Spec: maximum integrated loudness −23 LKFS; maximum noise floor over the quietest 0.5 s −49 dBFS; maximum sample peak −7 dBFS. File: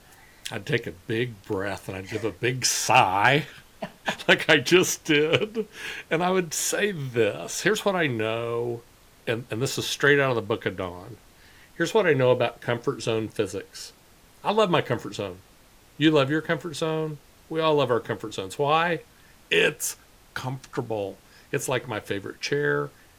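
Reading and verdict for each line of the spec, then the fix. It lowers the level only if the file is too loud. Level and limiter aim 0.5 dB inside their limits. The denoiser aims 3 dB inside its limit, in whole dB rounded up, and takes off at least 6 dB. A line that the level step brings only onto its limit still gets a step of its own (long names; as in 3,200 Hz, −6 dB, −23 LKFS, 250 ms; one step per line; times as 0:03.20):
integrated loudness −25.0 LKFS: in spec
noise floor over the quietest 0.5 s −54 dBFS: in spec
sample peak −4.0 dBFS: out of spec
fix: brickwall limiter −7.5 dBFS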